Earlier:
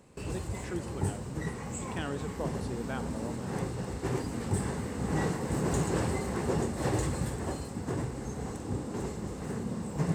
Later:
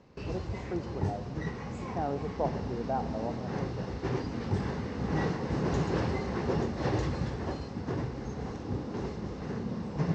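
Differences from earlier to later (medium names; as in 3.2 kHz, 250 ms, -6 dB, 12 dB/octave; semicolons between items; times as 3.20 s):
speech: add resonant low-pass 780 Hz, resonance Q 4.2; master: add steep low-pass 5.9 kHz 48 dB/octave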